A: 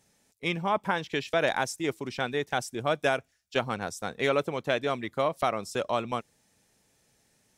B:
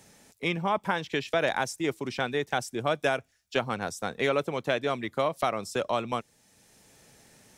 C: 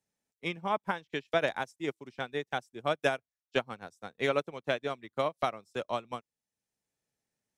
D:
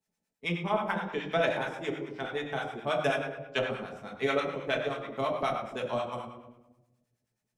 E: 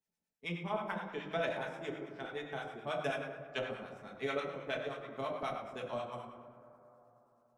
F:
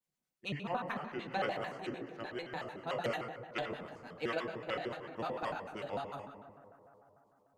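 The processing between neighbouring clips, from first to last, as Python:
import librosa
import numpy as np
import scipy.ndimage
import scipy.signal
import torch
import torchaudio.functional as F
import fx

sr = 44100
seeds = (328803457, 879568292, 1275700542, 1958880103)

y1 = fx.band_squash(x, sr, depth_pct=40)
y2 = fx.upward_expand(y1, sr, threshold_db=-43.0, expansion=2.5)
y3 = fx.room_shoebox(y2, sr, seeds[0], volume_m3=510.0, walls='mixed', distance_m=1.5)
y3 = fx.harmonic_tremolo(y3, sr, hz=9.4, depth_pct=70, crossover_hz=740.0)
y3 = y3 * 10.0 ** (1.5 / 20.0)
y4 = fx.rev_plate(y3, sr, seeds[1], rt60_s=3.8, hf_ratio=0.25, predelay_ms=0, drr_db=11.5)
y4 = y4 * 10.0 ** (-8.0 / 20.0)
y5 = fx.vibrato_shape(y4, sr, shape='square', rate_hz=6.7, depth_cents=250.0)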